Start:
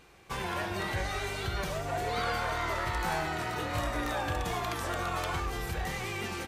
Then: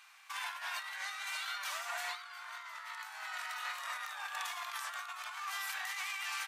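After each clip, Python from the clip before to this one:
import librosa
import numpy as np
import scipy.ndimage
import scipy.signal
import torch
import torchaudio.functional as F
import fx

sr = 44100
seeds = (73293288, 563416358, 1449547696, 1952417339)

y = scipy.signal.sosfilt(scipy.signal.cheby2(4, 50, 390.0, 'highpass', fs=sr, output='sos'), x)
y = fx.over_compress(y, sr, threshold_db=-40.0, ratio=-0.5)
y = F.gain(torch.from_numpy(y), -1.0).numpy()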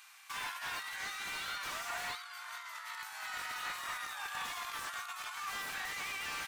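y = fx.high_shelf(x, sr, hz=5900.0, db=9.5)
y = fx.slew_limit(y, sr, full_power_hz=37.0)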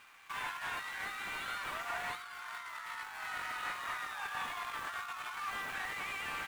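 y = scipy.signal.medfilt(x, 9)
y = F.gain(torch.from_numpy(y), 2.5).numpy()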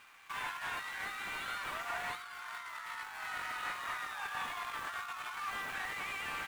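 y = x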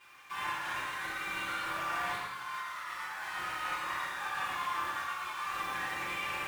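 y = x + 10.0 ** (-6.5 / 20.0) * np.pad(x, (int(116 * sr / 1000.0), 0))[:len(x)]
y = fx.rev_fdn(y, sr, rt60_s=0.87, lf_ratio=1.05, hf_ratio=0.75, size_ms=17.0, drr_db=-9.5)
y = F.gain(torch.from_numpy(y), -7.0).numpy()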